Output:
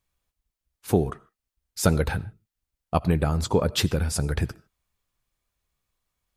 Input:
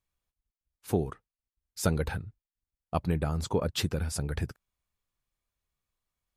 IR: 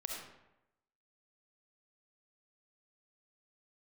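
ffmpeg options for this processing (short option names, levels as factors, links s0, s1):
-filter_complex "[0:a]asplit=2[s0][s1];[1:a]atrim=start_sample=2205,atrim=end_sample=6615,adelay=16[s2];[s1][s2]afir=irnorm=-1:irlink=0,volume=0.133[s3];[s0][s3]amix=inputs=2:normalize=0,volume=2.11"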